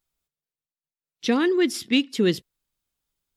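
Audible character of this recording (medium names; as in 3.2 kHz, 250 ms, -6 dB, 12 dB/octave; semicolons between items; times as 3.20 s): noise floor -95 dBFS; spectral tilt -4.5 dB/octave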